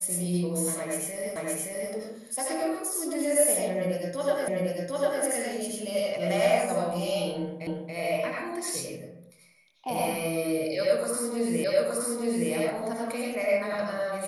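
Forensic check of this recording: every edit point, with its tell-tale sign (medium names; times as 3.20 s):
1.36 s: repeat of the last 0.57 s
4.48 s: repeat of the last 0.75 s
7.67 s: repeat of the last 0.28 s
11.64 s: repeat of the last 0.87 s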